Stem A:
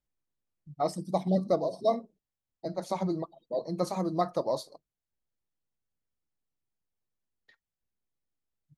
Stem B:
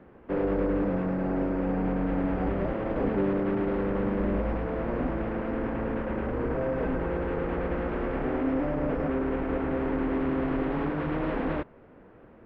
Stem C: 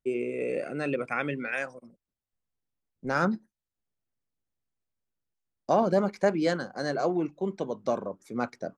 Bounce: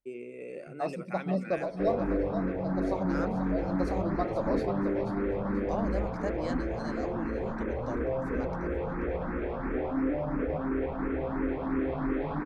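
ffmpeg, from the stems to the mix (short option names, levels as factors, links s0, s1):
-filter_complex "[0:a]lowpass=f=2500:p=1,volume=0.668,asplit=2[s0][s1];[s1]volume=0.422[s2];[1:a]bandreject=f=2900:w=7,asplit=2[s3][s4];[s4]afreqshift=2.9[s5];[s3][s5]amix=inputs=2:normalize=1,adelay=1500,volume=1[s6];[2:a]volume=0.282,asplit=2[s7][s8];[s8]volume=0.2[s9];[s2][s9]amix=inputs=2:normalize=0,aecho=0:1:484|968|1452|1936|2420:1|0.34|0.116|0.0393|0.0134[s10];[s0][s6][s7][s10]amix=inputs=4:normalize=0"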